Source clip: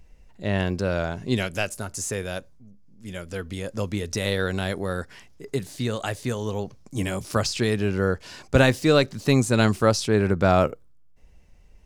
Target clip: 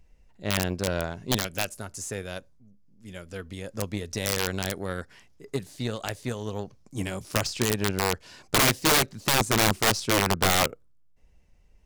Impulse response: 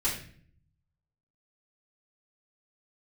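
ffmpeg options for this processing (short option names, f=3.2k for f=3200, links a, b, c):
-af "aeval=exprs='0.531*(cos(1*acos(clip(val(0)/0.531,-1,1)))-cos(1*PI/2))+0.188*(cos(2*acos(clip(val(0)/0.531,-1,1)))-cos(2*PI/2))+0.0473*(cos(4*acos(clip(val(0)/0.531,-1,1)))-cos(4*PI/2))+0.0188*(cos(5*acos(clip(val(0)/0.531,-1,1)))-cos(5*PI/2))+0.0531*(cos(7*acos(clip(val(0)/0.531,-1,1)))-cos(7*PI/2))':c=same,aeval=exprs='(mod(4.73*val(0)+1,2)-1)/4.73':c=same"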